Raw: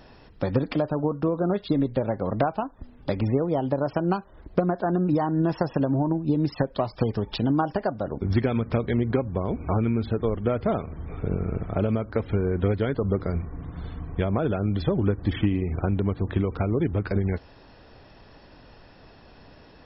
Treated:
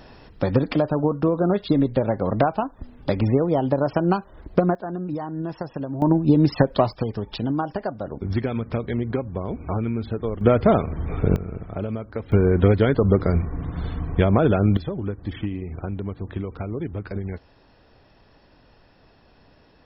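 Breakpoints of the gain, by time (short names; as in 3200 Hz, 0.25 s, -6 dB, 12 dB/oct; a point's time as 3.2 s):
+4 dB
from 4.75 s -6 dB
from 6.02 s +7 dB
from 6.93 s -1.5 dB
from 10.41 s +8 dB
from 11.36 s -4 dB
from 12.32 s +7 dB
from 14.77 s -5 dB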